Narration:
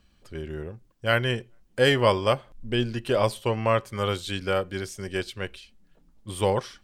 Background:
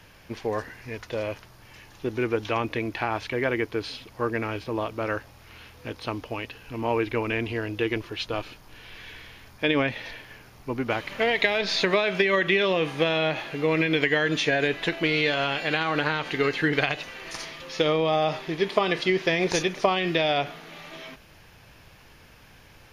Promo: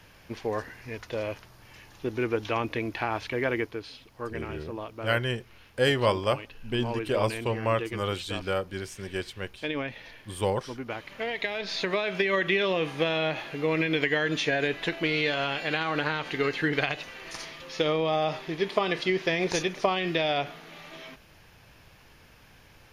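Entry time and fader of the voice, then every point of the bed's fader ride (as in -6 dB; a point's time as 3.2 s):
4.00 s, -3.5 dB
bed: 3.59 s -2 dB
3.82 s -8.5 dB
11.43 s -8.5 dB
12.37 s -3 dB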